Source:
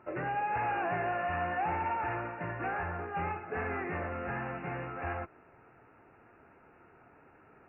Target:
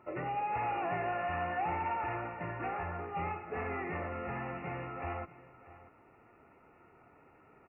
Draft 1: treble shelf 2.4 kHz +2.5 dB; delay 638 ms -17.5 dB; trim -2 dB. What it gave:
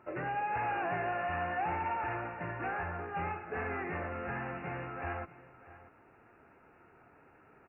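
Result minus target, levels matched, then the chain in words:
2 kHz band +2.5 dB
Butterworth band-stop 1.6 kHz, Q 6.1; treble shelf 2.4 kHz +2.5 dB; delay 638 ms -17.5 dB; trim -2 dB

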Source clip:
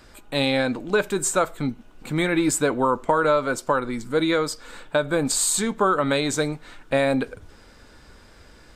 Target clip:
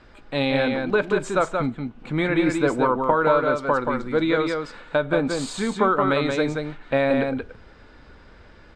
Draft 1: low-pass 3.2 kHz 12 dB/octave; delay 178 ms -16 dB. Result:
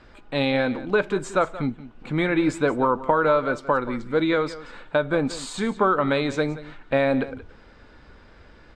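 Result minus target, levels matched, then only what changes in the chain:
echo-to-direct -11.5 dB
change: delay 178 ms -4.5 dB

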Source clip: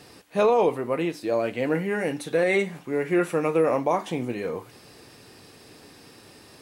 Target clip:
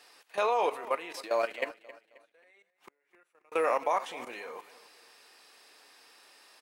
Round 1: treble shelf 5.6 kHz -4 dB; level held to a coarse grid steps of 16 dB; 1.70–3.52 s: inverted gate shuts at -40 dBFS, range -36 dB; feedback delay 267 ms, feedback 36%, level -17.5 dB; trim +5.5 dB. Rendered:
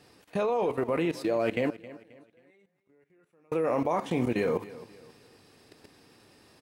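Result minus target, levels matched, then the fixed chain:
1 kHz band -5.5 dB
high-pass 840 Hz 12 dB/octave; treble shelf 5.6 kHz -4 dB; level held to a coarse grid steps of 16 dB; 1.70–3.52 s: inverted gate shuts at -40 dBFS, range -36 dB; feedback delay 267 ms, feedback 36%, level -17.5 dB; trim +5.5 dB

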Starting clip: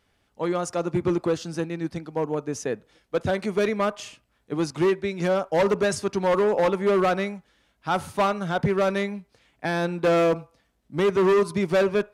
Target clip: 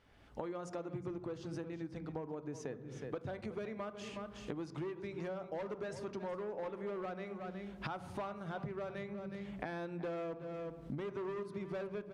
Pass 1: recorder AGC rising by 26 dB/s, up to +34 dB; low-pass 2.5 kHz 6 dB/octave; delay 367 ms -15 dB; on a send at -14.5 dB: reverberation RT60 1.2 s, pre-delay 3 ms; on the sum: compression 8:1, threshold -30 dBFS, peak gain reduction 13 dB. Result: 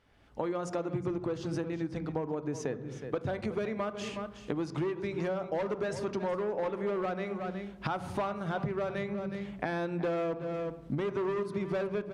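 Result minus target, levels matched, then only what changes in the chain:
compression: peak gain reduction -8.5 dB
change: compression 8:1, threshold -40 dBFS, peak gain reduction 22 dB

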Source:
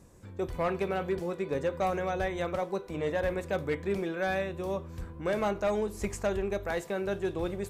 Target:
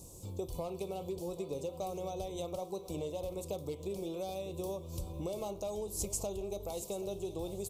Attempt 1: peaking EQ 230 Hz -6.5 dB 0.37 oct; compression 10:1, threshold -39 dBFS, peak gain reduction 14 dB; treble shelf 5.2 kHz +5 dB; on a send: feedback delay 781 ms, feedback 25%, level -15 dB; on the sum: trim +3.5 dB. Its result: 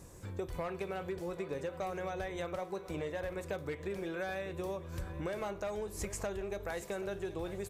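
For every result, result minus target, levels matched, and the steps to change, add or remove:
2 kHz band +16.0 dB; 8 kHz band -6.5 dB
add after compression: Butterworth band-stop 1.7 kHz, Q 0.76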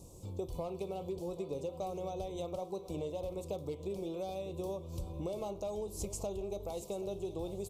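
8 kHz band -6.0 dB
change: treble shelf 5.2 kHz +14.5 dB

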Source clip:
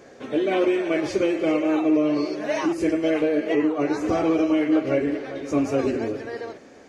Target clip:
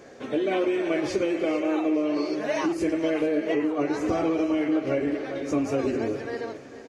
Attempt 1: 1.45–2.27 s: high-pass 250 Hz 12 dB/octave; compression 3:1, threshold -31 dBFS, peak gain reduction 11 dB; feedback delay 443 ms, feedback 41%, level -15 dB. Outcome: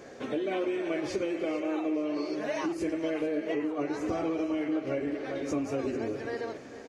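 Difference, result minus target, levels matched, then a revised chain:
compression: peak gain reduction +6 dB
1.45–2.27 s: high-pass 250 Hz 12 dB/octave; compression 3:1, threshold -22 dBFS, peak gain reduction 5 dB; feedback delay 443 ms, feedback 41%, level -15 dB

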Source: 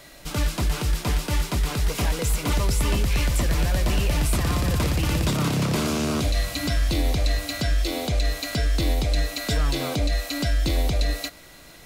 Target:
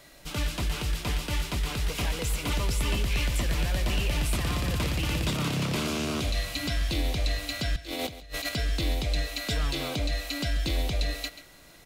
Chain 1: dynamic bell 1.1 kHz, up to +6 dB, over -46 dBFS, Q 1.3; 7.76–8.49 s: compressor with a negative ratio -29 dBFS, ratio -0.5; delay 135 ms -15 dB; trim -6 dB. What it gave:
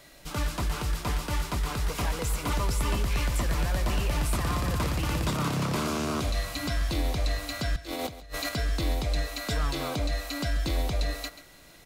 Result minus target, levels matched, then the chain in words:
1 kHz band +4.5 dB
dynamic bell 2.9 kHz, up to +6 dB, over -46 dBFS, Q 1.3; 7.76–8.49 s: compressor with a negative ratio -29 dBFS, ratio -0.5; delay 135 ms -15 dB; trim -6 dB

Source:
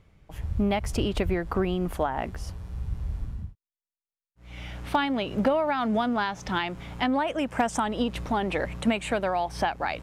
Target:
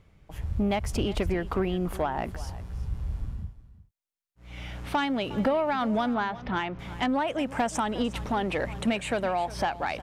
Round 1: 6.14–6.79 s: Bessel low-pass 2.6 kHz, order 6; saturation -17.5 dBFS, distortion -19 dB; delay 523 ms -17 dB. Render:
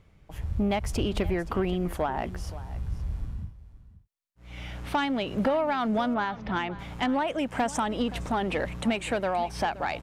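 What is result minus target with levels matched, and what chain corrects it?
echo 164 ms late
6.14–6.79 s: Bessel low-pass 2.6 kHz, order 6; saturation -17.5 dBFS, distortion -19 dB; delay 359 ms -17 dB

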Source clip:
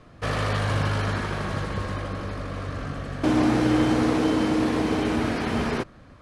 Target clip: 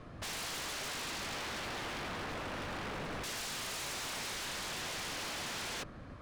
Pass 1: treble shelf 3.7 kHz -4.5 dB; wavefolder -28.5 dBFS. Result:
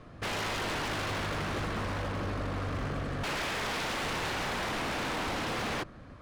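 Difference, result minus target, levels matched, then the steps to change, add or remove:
wavefolder: distortion -23 dB
change: wavefolder -35.5 dBFS

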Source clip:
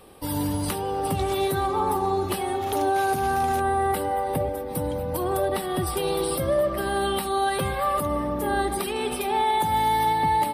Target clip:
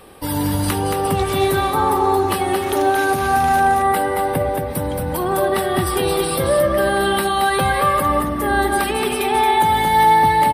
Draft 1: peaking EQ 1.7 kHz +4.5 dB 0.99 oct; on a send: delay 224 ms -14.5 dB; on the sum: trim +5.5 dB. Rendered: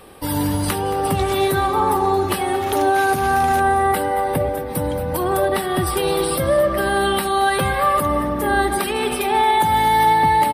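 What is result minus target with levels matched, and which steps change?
echo-to-direct -10 dB
change: delay 224 ms -4.5 dB

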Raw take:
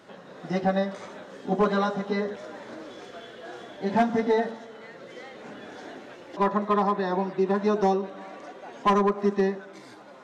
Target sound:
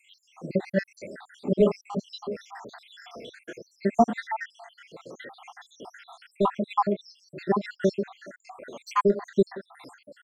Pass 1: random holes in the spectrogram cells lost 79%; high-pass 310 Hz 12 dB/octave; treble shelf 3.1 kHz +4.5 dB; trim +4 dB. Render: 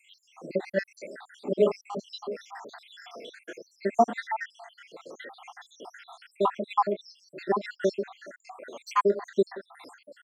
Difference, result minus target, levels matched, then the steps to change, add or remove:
250 Hz band -4.5 dB
remove: high-pass 310 Hz 12 dB/octave

